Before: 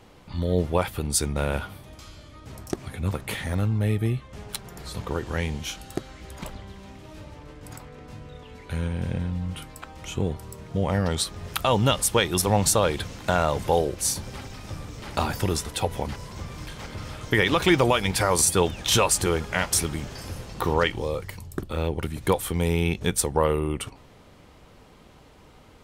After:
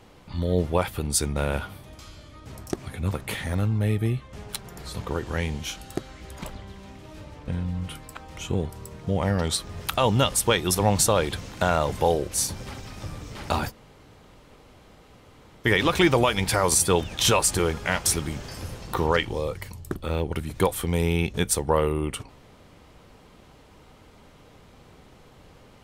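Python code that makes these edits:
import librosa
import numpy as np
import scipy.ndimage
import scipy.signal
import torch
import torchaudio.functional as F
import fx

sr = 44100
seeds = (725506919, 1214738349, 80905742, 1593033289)

y = fx.edit(x, sr, fx.cut(start_s=7.48, length_s=1.67),
    fx.room_tone_fill(start_s=15.37, length_s=1.95, crossfade_s=0.04), tone=tone)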